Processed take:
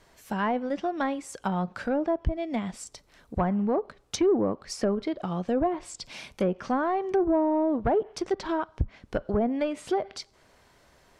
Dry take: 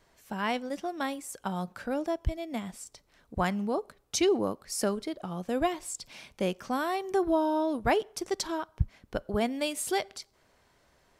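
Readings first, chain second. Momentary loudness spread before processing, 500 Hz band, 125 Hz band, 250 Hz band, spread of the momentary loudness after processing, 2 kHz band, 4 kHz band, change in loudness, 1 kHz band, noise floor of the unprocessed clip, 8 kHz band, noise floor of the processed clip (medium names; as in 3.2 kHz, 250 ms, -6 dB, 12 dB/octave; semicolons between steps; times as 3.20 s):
12 LU, +3.5 dB, +3.0 dB, +4.5 dB, 12 LU, -1.0 dB, -3.5 dB, +3.0 dB, +2.5 dB, -67 dBFS, -5.0 dB, -61 dBFS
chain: saturation -22.5 dBFS, distortion -14 dB; low-pass that closes with the level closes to 830 Hz, closed at -26 dBFS; trim +6 dB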